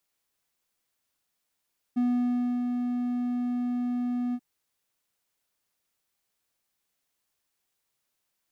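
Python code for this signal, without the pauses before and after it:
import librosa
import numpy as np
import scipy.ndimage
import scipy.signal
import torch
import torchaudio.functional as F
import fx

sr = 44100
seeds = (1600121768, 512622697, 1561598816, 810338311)

y = fx.adsr_tone(sr, wave='triangle', hz=245.0, attack_ms=16.0, decay_ms=642.0, sustain_db=-4.5, held_s=2.38, release_ms=54.0, level_db=-19.5)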